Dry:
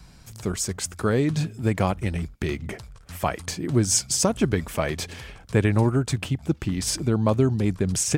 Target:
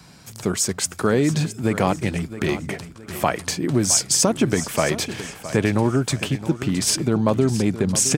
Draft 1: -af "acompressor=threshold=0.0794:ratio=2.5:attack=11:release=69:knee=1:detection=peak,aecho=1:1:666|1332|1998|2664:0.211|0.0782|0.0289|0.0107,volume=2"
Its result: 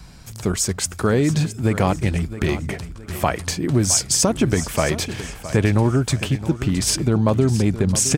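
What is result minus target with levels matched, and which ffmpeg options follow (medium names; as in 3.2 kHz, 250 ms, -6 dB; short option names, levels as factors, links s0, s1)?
125 Hz band +3.5 dB
-af "acompressor=threshold=0.0794:ratio=2.5:attack=11:release=69:knee=1:detection=peak,highpass=140,aecho=1:1:666|1332|1998|2664:0.211|0.0782|0.0289|0.0107,volume=2"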